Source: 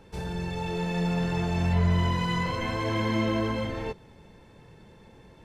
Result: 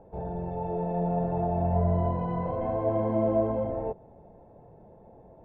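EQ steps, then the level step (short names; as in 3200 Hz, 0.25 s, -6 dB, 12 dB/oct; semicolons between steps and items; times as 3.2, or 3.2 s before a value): synth low-pass 690 Hz, resonance Q 4.9; -3.0 dB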